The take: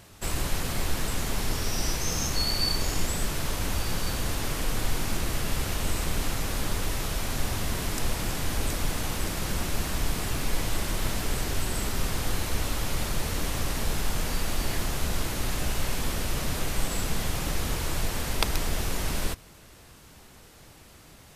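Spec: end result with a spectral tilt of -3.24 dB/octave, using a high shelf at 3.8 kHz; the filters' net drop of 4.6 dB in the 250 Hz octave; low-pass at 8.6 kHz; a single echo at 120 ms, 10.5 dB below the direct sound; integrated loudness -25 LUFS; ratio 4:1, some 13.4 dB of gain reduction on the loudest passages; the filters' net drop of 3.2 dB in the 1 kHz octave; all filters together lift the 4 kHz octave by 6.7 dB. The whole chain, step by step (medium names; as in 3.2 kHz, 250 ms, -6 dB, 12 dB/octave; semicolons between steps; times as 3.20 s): low-pass 8.6 kHz; peaking EQ 250 Hz -6.5 dB; peaking EQ 1 kHz -4.5 dB; treble shelf 3.8 kHz +4 dB; peaking EQ 4 kHz +6 dB; compression 4:1, threshold -33 dBFS; delay 120 ms -10.5 dB; trim +11 dB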